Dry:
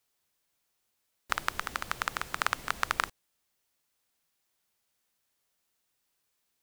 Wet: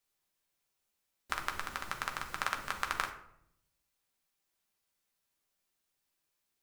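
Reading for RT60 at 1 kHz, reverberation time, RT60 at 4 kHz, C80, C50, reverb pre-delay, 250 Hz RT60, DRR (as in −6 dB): 0.70 s, 0.75 s, 0.45 s, 13.0 dB, 9.5 dB, 5 ms, 1.0 s, 2.5 dB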